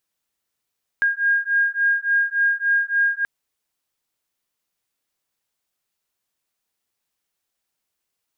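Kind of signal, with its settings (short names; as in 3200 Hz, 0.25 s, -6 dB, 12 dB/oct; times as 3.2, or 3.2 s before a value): beating tones 1620 Hz, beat 3.5 Hz, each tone -20 dBFS 2.23 s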